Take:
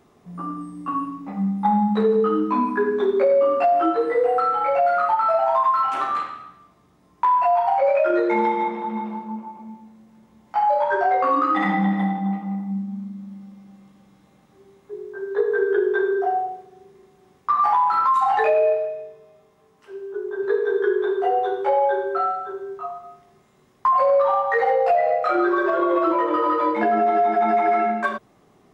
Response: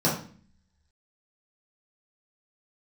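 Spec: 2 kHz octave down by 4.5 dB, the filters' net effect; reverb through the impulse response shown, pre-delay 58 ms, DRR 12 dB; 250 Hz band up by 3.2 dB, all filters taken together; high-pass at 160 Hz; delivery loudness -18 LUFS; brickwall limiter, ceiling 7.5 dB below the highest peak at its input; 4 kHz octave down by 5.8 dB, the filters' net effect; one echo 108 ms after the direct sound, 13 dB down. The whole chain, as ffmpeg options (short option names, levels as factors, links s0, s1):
-filter_complex "[0:a]highpass=160,equalizer=f=250:t=o:g=6,equalizer=f=2000:t=o:g=-5,equalizer=f=4000:t=o:g=-5.5,alimiter=limit=0.168:level=0:latency=1,aecho=1:1:108:0.224,asplit=2[s0][s1];[1:a]atrim=start_sample=2205,adelay=58[s2];[s1][s2]afir=irnorm=-1:irlink=0,volume=0.0531[s3];[s0][s3]amix=inputs=2:normalize=0,volume=1.68"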